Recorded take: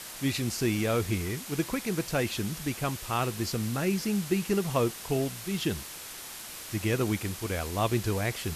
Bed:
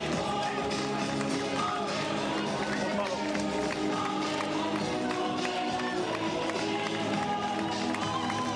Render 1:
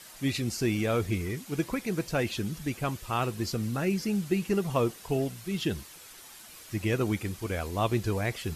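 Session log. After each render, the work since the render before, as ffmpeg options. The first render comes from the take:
-af "afftdn=nr=9:nf=-42"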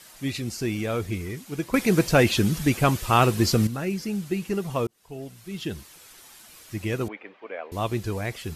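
-filter_complex "[0:a]asettb=1/sr,asplit=3[s0][s1][s2];[s0]atrim=end=7.084[s3];[s1]atrim=start=7.08:end=7.72,asetpts=PTS-STARTPTS,afade=t=in:d=0.004:c=qsin,afade=t=out:st=0.636:d=0.004:c=qsin,highpass=f=340:w=0.5412,highpass=f=340:w=1.3066,equalizer=f=350:t=q:w=4:g=-9,equalizer=f=600:t=q:w=4:g=3,equalizer=f=1400:t=q:w=4:g=-4,lowpass=f=2500:w=0.5412,lowpass=f=2500:w=1.3066[s4];[s2]atrim=start=7.716[s5];[s3][s4]acrossfade=d=0.004:c1=hsin:c2=qsin[s6];[s6][s5]acrossfade=d=0.004:c1=qsin:c2=hsin,asplit=4[s7][s8][s9][s10];[s7]atrim=end=1.742[s11];[s8]atrim=start=1.738:end=3.672,asetpts=PTS-STARTPTS,volume=3.35[s12];[s9]atrim=start=3.668:end=4.87,asetpts=PTS-STARTPTS,afade=t=out:st=1.198:d=0.004:c=hsin[s13];[s10]atrim=start=4.87,asetpts=PTS-STARTPTS,afade=t=in:d=1.31:c=qsin[s14];[s11][s12]acrossfade=d=0.004:c1=hsin:c2=hsin[s15];[s13][s14]concat=n=2:v=0:a=1[s16];[s15][s16]acrossfade=d=0.004:c1=hsin:c2=hsin"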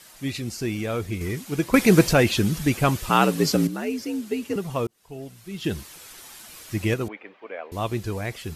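-filter_complex "[0:a]asettb=1/sr,asplit=3[s0][s1][s2];[s0]atrim=end=3.094[s3];[s1]atrim=start=3.09:end=4.56,asetpts=PTS-STARTPTS,afade=t=in:d=0.004:c=qsin,afade=t=out:st=1.466:d=0.004:c=qsin,afreqshift=64[s4];[s2]atrim=start=4.556[s5];[s3][s4]acrossfade=d=0.004:c1=hsin:c2=qsin[s6];[s6][s5]acrossfade=d=0.004:c1=qsin:c2=hsin,asplit=5[s7][s8][s9][s10][s11];[s7]atrim=end=1.212[s12];[s8]atrim=start=1.208:end=2.132,asetpts=PTS-STARTPTS,volume=1.78[s13];[s9]atrim=start=2.128:end=5.642[s14];[s10]atrim=start=5.638:end=6.942,asetpts=PTS-STARTPTS,volume=1.78[s15];[s11]atrim=start=6.938[s16];[s12][s13]acrossfade=d=0.004:c1=hsin:c2=hsin[s17];[s17][s14]acrossfade=d=0.004:c1=hsin:c2=hsin[s18];[s18][s15]acrossfade=d=0.004:c1=hsin:c2=hsin[s19];[s19][s16]acrossfade=d=0.004:c1=hsin:c2=hsin"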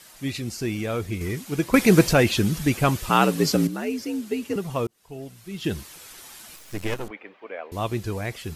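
-filter_complex "[0:a]asettb=1/sr,asplit=3[s0][s1][s2];[s0]atrim=end=6.564[s3];[s1]atrim=start=6.56:end=7.11,asetpts=PTS-STARTPTS,afade=t=in:d=0.004:c=qsin,afade=t=out:st=0.546:d=0.004:c=qsin,aeval=exprs='max(val(0),0)':c=same[s4];[s2]atrim=start=7.106[s5];[s3][s4]acrossfade=d=0.004:c1=hsin:c2=qsin[s6];[s6][s5]acrossfade=d=0.004:c1=qsin:c2=hsin"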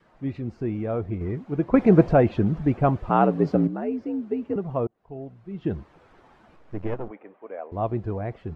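-af "adynamicequalizer=threshold=0.0126:dfrequency=690:dqfactor=3.5:tfrequency=690:tqfactor=3.5:attack=5:release=100:ratio=0.375:range=3:mode=boostabove:tftype=bell,lowpass=1000"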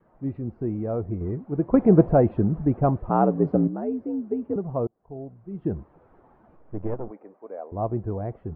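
-af "lowpass=1000"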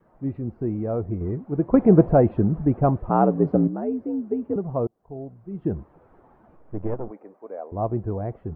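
-af "volume=1.19,alimiter=limit=0.708:level=0:latency=1"

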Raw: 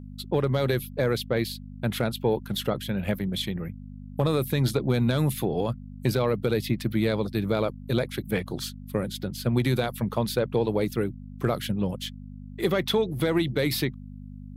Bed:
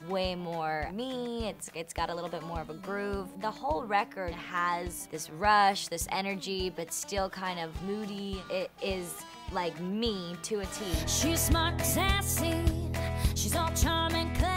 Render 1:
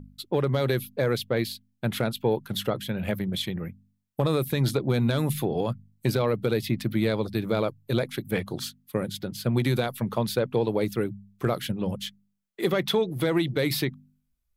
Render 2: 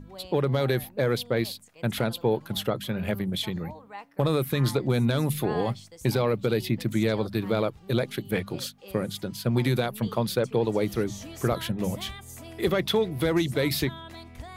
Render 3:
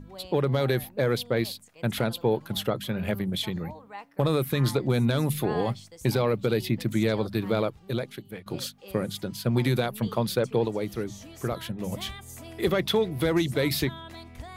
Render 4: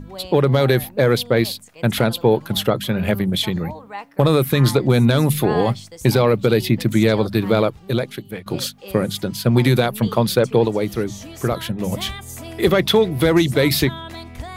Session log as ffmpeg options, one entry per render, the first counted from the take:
-af "bandreject=f=50:t=h:w=4,bandreject=f=100:t=h:w=4,bandreject=f=150:t=h:w=4,bandreject=f=200:t=h:w=4,bandreject=f=250:t=h:w=4"
-filter_complex "[1:a]volume=0.211[s0];[0:a][s0]amix=inputs=2:normalize=0"
-filter_complex "[0:a]asplit=4[s0][s1][s2][s3];[s0]atrim=end=8.46,asetpts=PTS-STARTPTS,afade=t=out:st=7.58:d=0.88:silence=0.125893[s4];[s1]atrim=start=8.46:end=10.682,asetpts=PTS-STARTPTS,afade=t=in:d=0.004:c=hsin:silence=0.125893[s5];[s2]atrim=start=10.678:end=11.922,asetpts=PTS-STARTPTS,volume=0.596[s6];[s3]atrim=start=11.918[s7];[s4][s5]concat=n=2:v=0:a=1[s8];[s8][s6]acrossfade=d=0.004:c1=hsin:c2=hsin[s9];[s9][s7]acrossfade=d=0.004:c1=hsin:c2=hsin"
-af "volume=2.82"

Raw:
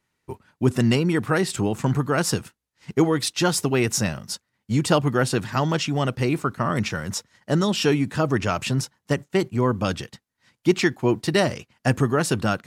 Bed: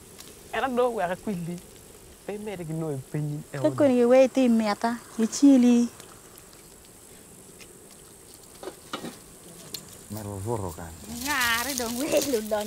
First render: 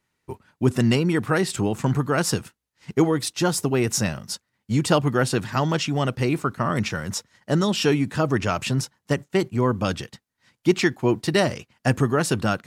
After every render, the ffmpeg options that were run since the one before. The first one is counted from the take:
-filter_complex "[0:a]asettb=1/sr,asplit=3[s0][s1][s2];[s0]atrim=end=3.114[s3];[s1]atrim=start=3.11:end=3.87,asetpts=PTS-STARTPTS,afade=t=in:d=0.004:c=qsin,afade=t=out:st=0.756:d=0.004:c=qsin,equalizer=f=2900:t=o:w=2.2:g=-4.5[s4];[s2]atrim=start=3.866[s5];[s3][s4]acrossfade=d=0.004:c1=hsin:c2=qsin[s6];[s6][s5]acrossfade=d=0.004:c1=qsin:c2=hsin"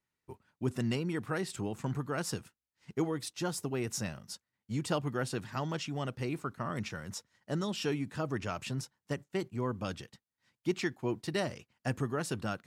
-af "volume=0.224"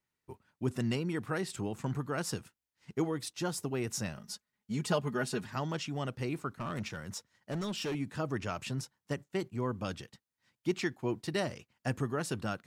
-filter_complex "[0:a]asettb=1/sr,asplit=3[s0][s1][s2];[s0]atrim=end=4.164[s3];[s1]atrim=start=4.16:end=5.46,asetpts=PTS-STARTPTS,afade=t=in:d=0.004:c=qsin,afade=t=out:st=1.296:d=0.004:c=qsin,aecho=1:1:4.8:0.65,atrim=end_sample=57330[s4];[s2]atrim=start=5.456[s5];[s3][s4]acrossfade=d=0.004:c1=hsin:c2=qsin[s6];[s6][s5]acrossfade=d=0.004:c1=qsin:c2=hsin,asettb=1/sr,asplit=3[s7][s8][s9];[s7]atrim=end=6.594[s10];[s8]atrim=start=6.59:end=7.95,asetpts=PTS-STARTPTS,afade=t=in:d=0.004:c=qsin,afade=t=out:st=1.356:d=0.004:c=qsin,asoftclip=type=hard:threshold=0.0266[s11];[s9]atrim=start=7.946[s12];[s10][s11]acrossfade=d=0.004:c1=hsin:c2=qsin[s13];[s13][s12]acrossfade=d=0.004:c1=qsin:c2=hsin"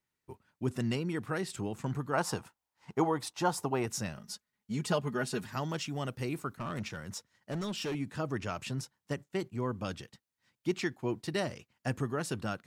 -filter_complex "[0:a]asettb=1/sr,asplit=3[s0][s1][s2];[s0]atrim=end=2.134[s3];[s1]atrim=start=2.13:end=3.86,asetpts=PTS-STARTPTS,afade=t=in:d=0.004:c=qsin,afade=t=out:st=1.726:d=0.004:c=qsin,equalizer=f=880:w=1.3:g=13.5[s4];[s2]atrim=start=3.856[s5];[s3][s4]acrossfade=d=0.004:c1=hsin:c2=qsin[s6];[s6][s5]acrossfade=d=0.004:c1=qsin:c2=hsin,asettb=1/sr,asplit=3[s7][s8][s9];[s7]atrim=end=5.344[s10];[s8]atrim=start=5.34:end=6.57,asetpts=PTS-STARTPTS,afade=t=in:d=0.004:c=qsin,afade=t=out:st=1.226:d=0.004:c=qsin,highshelf=f=9900:g=11[s11];[s9]atrim=start=6.566[s12];[s10][s11]acrossfade=d=0.004:c1=hsin:c2=qsin[s13];[s13][s12]acrossfade=d=0.004:c1=qsin:c2=hsin"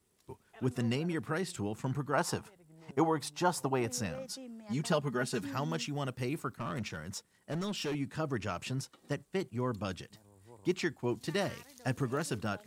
-filter_complex "[1:a]volume=0.0473[s0];[0:a][s0]amix=inputs=2:normalize=0"

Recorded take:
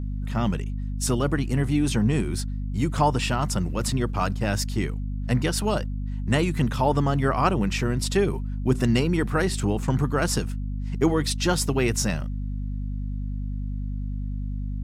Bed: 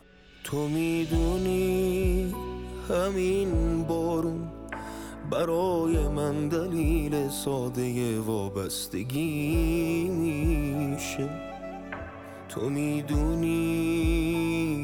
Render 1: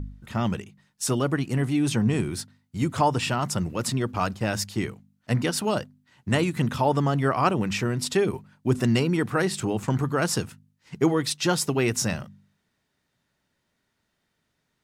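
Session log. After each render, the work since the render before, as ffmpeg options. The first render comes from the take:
-af "bandreject=f=50:t=h:w=4,bandreject=f=100:t=h:w=4,bandreject=f=150:t=h:w=4,bandreject=f=200:t=h:w=4,bandreject=f=250:t=h:w=4"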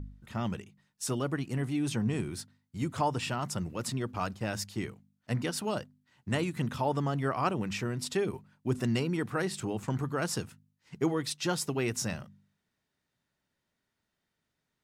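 -af "volume=0.422"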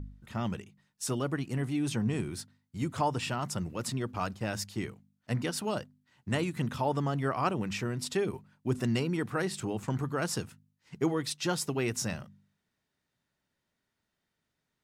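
-af anull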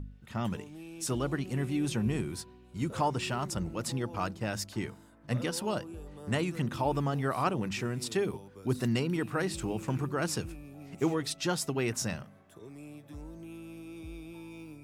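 -filter_complex "[1:a]volume=0.112[s0];[0:a][s0]amix=inputs=2:normalize=0"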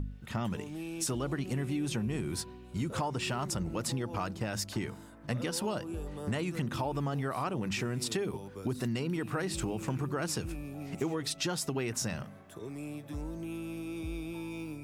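-filter_complex "[0:a]asplit=2[s0][s1];[s1]alimiter=level_in=1.19:limit=0.0631:level=0:latency=1,volume=0.841,volume=1[s2];[s0][s2]amix=inputs=2:normalize=0,acompressor=threshold=0.0316:ratio=6"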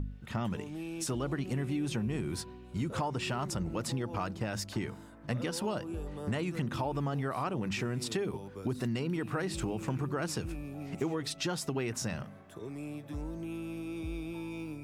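-af "highshelf=f=5400:g=-5.5"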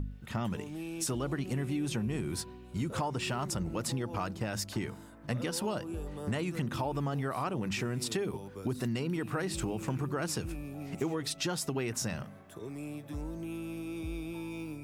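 -af "highshelf=f=8500:g=7"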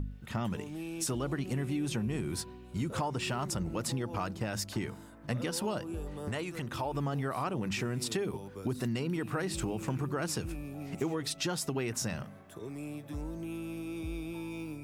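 -filter_complex "[0:a]asettb=1/sr,asplit=3[s0][s1][s2];[s0]atrim=end=6.284[s3];[s1]atrim=start=6.28:end=6.94,asetpts=PTS-STARTPTS,afade=t=in:d=0.004:c=qsin,afade=t=out:st=0.656:d=0.004:c=qsin,equalizer=f=190:t=o:w=1.2:g=-8[s4];[s2]atrim=start=6.936[s5];[s3][s4]acrossfade=d=0.004:c1=hsin:c2=qsin[s6];[s6][s5]acrossfade=d=0.004:c1=qsin:c2=hsin"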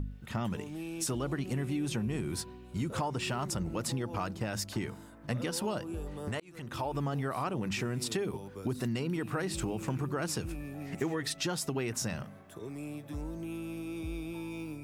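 -filter_complex "[0:a]asettb=1/sr,asplit=3[s0][s1][s2];[s0]atrim=end=10.604[s3];[s1]atrim=start=10.6:end=11.39,asetpts=PTS-STARTPTS,afade=t=in:d=0.004:c=qsin,afade=t=out:st=0.786:d=0.004:c=qsin,equalizer=f=1800:t=o:w=0.27:g=11[s4];[s2]atrim=start=11.386[s5];[s3][s4]acrossfade=d=0.004:c1=hsin:c2=qsin[s6];[s6][s5]acrossfade=d=0.004:c1=qsin:c2=hsin,asplit=2[s7][s8];[s7]atrim=end=6.4,asetpts=PTS-STARTPTS,afade=t=out:st=6.396:d=0.004:c=hsin[s9];[s8]atrim=start=6.4,asetpts=PTS-STARTPTS,afade=t=in:d=0.4[s10];[s9][s10]concat=n=2:v=0:a=1"

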